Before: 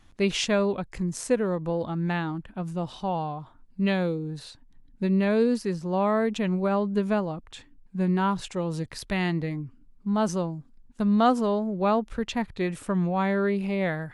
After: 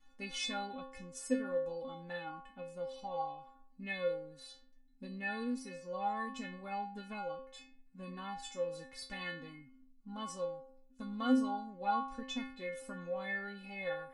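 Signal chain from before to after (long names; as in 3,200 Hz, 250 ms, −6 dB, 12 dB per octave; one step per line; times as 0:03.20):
stiff-string resonator 260 Hz, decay 0.61 s, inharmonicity 0.008
level +7.5 dB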